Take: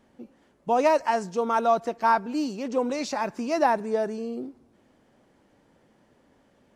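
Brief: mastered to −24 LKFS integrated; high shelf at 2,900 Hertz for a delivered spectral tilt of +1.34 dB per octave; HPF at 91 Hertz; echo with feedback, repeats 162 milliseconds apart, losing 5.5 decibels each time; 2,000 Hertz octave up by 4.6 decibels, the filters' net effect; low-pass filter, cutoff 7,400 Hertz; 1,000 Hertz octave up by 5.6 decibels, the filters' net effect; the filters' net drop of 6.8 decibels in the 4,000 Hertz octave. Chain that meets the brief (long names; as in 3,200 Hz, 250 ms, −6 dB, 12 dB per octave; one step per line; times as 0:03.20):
high-pass filter 91 Hz
low-pass filter 7,400 Hz
parametric band 1,000 Hz +6.5 dB
parametric band 2,000 Hz +7 dB
high-shelf EQ 2,900 Hz −8 dB
parametric band 4,000 Hz −4.5 dB
repeating echo 162 ms, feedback 53%, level −5.5 dB
level −4 dB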